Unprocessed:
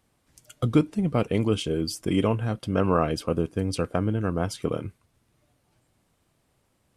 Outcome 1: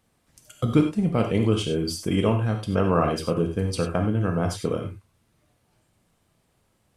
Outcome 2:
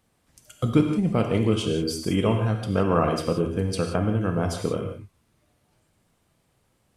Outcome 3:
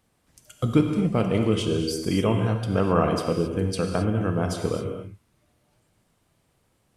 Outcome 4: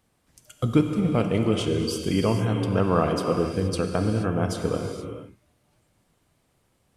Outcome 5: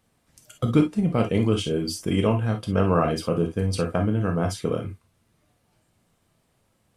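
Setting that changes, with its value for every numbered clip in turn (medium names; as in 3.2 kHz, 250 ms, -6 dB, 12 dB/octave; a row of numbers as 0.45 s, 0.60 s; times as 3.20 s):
gated-style reverb, gate: 120 ms, 200 ms, 290 ms, 500 ms, 80 ms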